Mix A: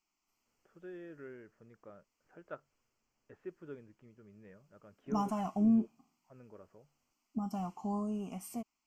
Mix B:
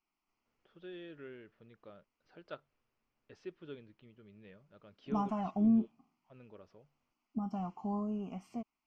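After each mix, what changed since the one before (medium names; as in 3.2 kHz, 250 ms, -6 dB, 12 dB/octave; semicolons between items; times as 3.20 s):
first voice: remove low-pass 1.9 kHz 24 dB/octave; master: add distance through air 190 m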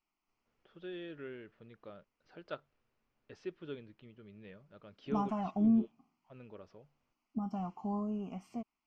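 first voice +3.5 dB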